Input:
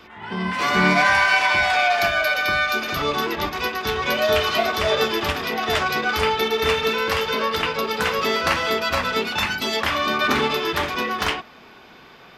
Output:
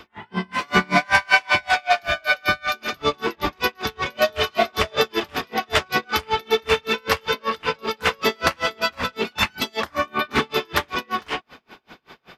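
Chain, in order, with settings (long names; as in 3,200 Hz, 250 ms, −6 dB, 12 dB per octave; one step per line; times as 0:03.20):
0:09.83–0:10.30: parametric band 2,300 Hz → 7,900 Hz −13.5 dB 0.62 octaves
tremolo with a sine in dB 5.2 Hz, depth 35 dB
level +5 dB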